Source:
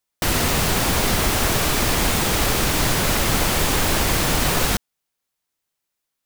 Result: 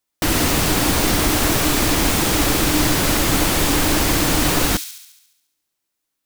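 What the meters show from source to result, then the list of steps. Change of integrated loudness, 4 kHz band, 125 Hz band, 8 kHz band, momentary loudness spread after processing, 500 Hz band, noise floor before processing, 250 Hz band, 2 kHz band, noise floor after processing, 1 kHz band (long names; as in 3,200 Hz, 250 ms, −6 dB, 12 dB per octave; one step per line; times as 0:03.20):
+2.0 dB, +1.5 dB, +1.0 dB, +2.5 dB, 2 LU, +2.0 dB, −80 dBFS, +5.5 dB, +1.0 dB, −78 dBFS, +1.0 dB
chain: parametric band 300 Hz +11.5 dB 0.23 octaves
delay with a high-pass on its return 70 ms, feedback 60%, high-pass 3,900 Hz, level −6 dB
level +1 dB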